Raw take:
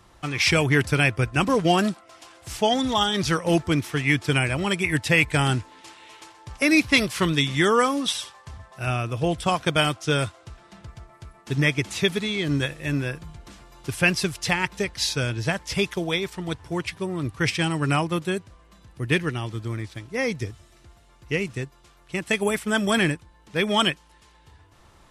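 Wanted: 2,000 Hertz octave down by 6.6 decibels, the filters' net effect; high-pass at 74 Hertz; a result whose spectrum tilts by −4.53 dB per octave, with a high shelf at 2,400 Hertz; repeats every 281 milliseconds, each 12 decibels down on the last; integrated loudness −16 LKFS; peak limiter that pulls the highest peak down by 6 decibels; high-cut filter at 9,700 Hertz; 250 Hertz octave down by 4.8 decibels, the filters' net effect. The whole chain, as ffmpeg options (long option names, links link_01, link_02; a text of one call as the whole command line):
ffmpeg -i in.wav -af "highpass=74,lowpass=9700,equalizer=frequency=250:width_type=o:gain=-7,equalizer=frequency=2000:width_type=o:gain=-4.5,highshelf=frequency=2400:gain=-7,alimiter=limit=-16dB:level=0:latency=1,aecho=1:1:281|562|843:0.251|0.0628|0.0157,volume=13dB" out.wav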